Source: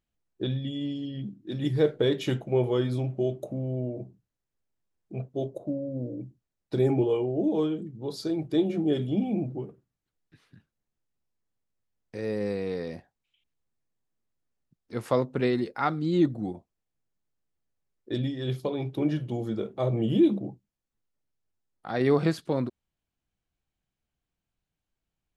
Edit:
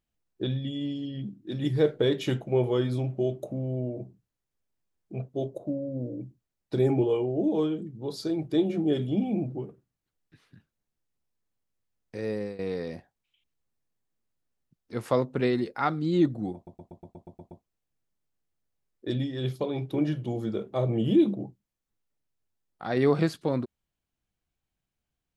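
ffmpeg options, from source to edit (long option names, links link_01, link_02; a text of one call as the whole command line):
ffmpeg -i in.wav -filter_complex "[0:a]asplit=10[link_01][link_02][link_03][link_04][link_05][link_06][link_07][link_08][link_09][link_10];[link_01]atrim=end=12.59,asetpts=PTS-STARTPTS,afade=type=out:start_time=12.22:duration=0.37:curve=qsin:silence=0.133352[link_11];[link_02]atrim=start=12.59:end=16.672,asetpts=PTS-STARTPTS,afade=type=in:duration=0.004:curve=hsin:silence=0.133352[link_12];[link_03]atrim=start=16.548:end=16.672[link_13];[link_04]atrim=start=16.548:end=16.672[link_14];[link_05]atrim=start=16.548:end=16.672[link_15];[link_06]atrim=start=16.548:end=16.672[link_16];[link_07]atrim=start=16.548:end=16.672[link_17];[link_08]atrim=start=16.548:end=16.672[link_18];[link_09]atrim=start=16.548:end=16.672[link_19];[link_10]atrim=start=16.548[link_20];[link_11][link_12]concat=n=2:v=0:a=1[link_21];[link_21][link_13]acrossfade=duration=0.004:curve1=hsin:curve2=hsin[link_22];[link_22][link_14]acrossfade=duration=0.004:curve1=hsin:curve2=hsin[link_23];[link_23][link_15]acrossfade=duration=0.004:curve1=hsin:curve2=hsin[link_24];[link_24][link_16]acrossfade=duration=0.004:curve1=hsin:curve2=hsin[link_25];[link_25][link_17]acrossfade=duration=0.004:curve1=hsin:curve2=hsin[link_26];[link_26][link_18]acrossfade=duration=0.004:curve1=hsin:curve2=hsin[link_27];[link_27][link_19]acrossfade=duration=0.004:curve1=hsin:curve2=hsin[link_28];[link_28][link_20]acrossfade=duration=0.004:curve1=hsin:curve2=hsin" out.wav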